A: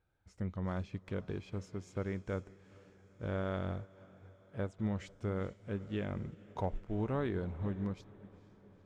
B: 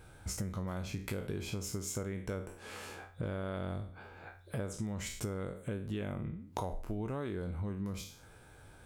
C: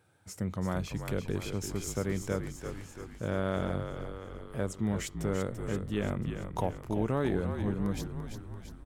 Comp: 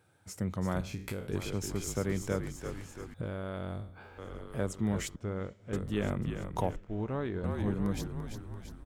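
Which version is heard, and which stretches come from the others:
C
0.81–1.32 from B
3.14–4.18 from B
5.16–5.73 from A
6.76–7.44 from A

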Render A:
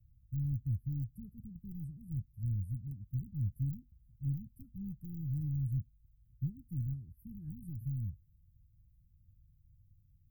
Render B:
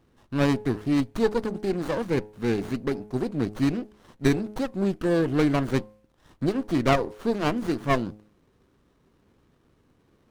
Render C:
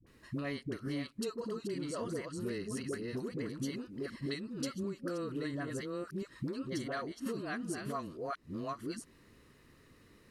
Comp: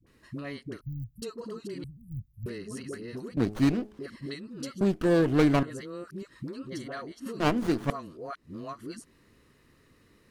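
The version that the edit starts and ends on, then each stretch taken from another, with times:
C
0.81–1.22 from A
1.84–2.46 from A
3.37–3.99 from B
4.81–5.63 from B
7.4–7.9 from B

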